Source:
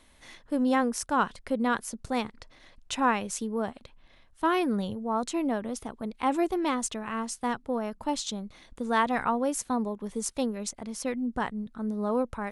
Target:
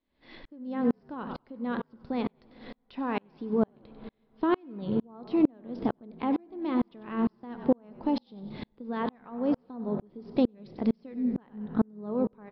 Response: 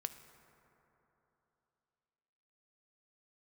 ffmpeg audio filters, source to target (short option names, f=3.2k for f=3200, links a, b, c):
-filter_complex "[0:a]deesser=0.8,asplit=5[a][b][c][d][e];[b]adelay=95,afreqshift=-45,volume=-15.5dB[f];[c]adelay=190,afreqshift=-90,volume=-23.2dB[g];[d]adelay=285,afreqshift=-135,volume=-31dB[h];[e]adelay=380,afreqshift=-180,volume=-38.7dB[i];[a][f][g][h][i]amix=inputs=5:normalize=0,acompressor=threshold=-33dB:ratio=6,equalizer=f=300:t=o:w=1.8:g=11,asplit=2[j][k];[1:a]atrim=start_sample=2205[l];[k][l]afir=irnorm=-1:irlink=0,volume=6dB[m];[j][m]amix=inputs=2:normalize=0,aresample=11025,aresample=44100,bandreject=f=1.4k:w=29,aeval=exprs='val(0)*pow(10,-39*if(lt(mod(-2.2*n/s,1),2*abs(-2.2)/1000),1-mod(-2.2*n/s,1)/(2*abs(-2.2)/1000),(mod(-2.2*n/s,1)-2*abs(-2.2)/1000)/(1-2*abs(-2.2)/1000))/20)':c=same"